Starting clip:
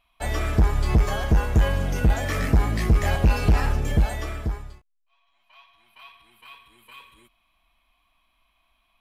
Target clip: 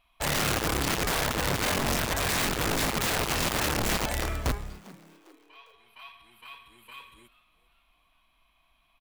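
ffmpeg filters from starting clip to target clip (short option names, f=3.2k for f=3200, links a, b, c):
-filter_complex "[0:a]acompressor=threshold=-17dB:ratio=12,aeval=exprs='(mod(12.6*val(0)+1,2)-1)/12.6':c=same,asplit=2[a][b];[b]asplit=3[c][d][e];[c]adelay=401,afreqshift=130,volume=-21dB[f];[d]adelay=802,afreqshift=260,volume=-28.5dB[g];[e]adelay=1203,afreqshift=390,volume=-36.1dB[h];[f][g][h]amix=inputs=3:normalize=0[i];[a][i]amix=inputs=2:normalize=0"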